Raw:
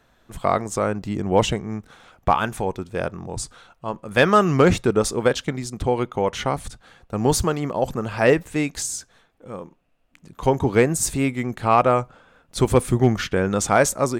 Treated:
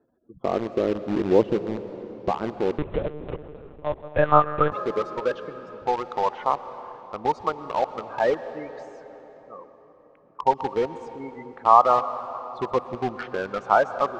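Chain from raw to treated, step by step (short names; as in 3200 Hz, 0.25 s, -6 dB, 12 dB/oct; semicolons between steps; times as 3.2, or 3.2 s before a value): spectral gate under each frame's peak -15 dB strong; band-pass sweep 350 Hz -> 1000 Hz, 3.34–4.4; in parallel at -4 dB: bit-crush 5-bit; on the sum: air absorption 180 m; on a send at -12 dB: reverb RT60 4.3 s, pre-delay 0.106 s; 2.78–4.72 on the sum: monotone LPC vocoder at 8 kHz 150 Hz; gain +2.5 dB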